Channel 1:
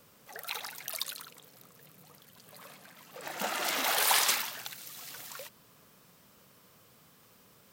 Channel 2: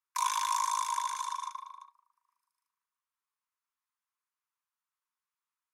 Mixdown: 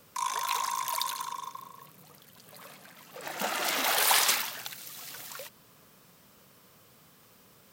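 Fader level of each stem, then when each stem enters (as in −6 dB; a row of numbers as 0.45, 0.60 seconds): +2.0, −1.5 decibels; 0.00, 0.00 seconds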